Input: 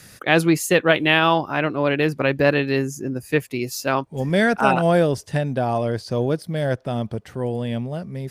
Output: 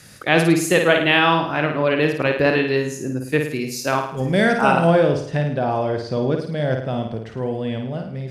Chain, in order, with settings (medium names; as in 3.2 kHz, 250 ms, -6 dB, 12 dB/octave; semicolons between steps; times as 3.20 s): low-pass 12 kHz 12 dB/octave, from 4.87 s 5 kHz; flutter echo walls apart 9.2 m, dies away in 0.59 s